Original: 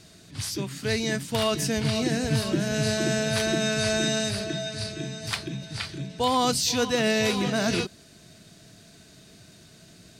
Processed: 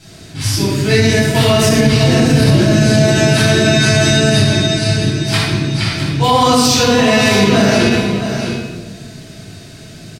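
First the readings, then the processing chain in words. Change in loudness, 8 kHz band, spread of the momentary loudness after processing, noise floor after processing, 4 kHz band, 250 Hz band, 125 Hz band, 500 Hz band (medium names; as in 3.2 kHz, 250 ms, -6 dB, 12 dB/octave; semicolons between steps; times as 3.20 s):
+14.0 dB, +11.0 dB, 8 LU, -36 dBFS, +12.5 dB, +15.0 dB, +18.5 dB, +13.5 dB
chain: delay 660 ms -10.5 dB; simulated room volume 820 m³, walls mixed, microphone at 8.1 m; loudness maximiser +2 dB; trim -1 dB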